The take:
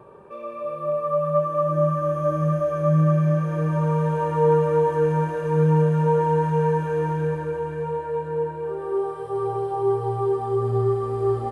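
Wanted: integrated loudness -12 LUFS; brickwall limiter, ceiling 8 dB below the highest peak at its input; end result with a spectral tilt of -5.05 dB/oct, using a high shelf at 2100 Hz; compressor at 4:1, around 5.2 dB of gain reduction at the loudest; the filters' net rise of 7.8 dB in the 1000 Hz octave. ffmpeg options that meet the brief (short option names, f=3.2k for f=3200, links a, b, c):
-af "equalizer=f=1k:t=o:g=8,highshelf=f=2.1k:g=4,acompressor=threshold=-18dB:ratio=4,volume=14.5dB,alimiter=limit=-4.5dB:level=0:latency=1"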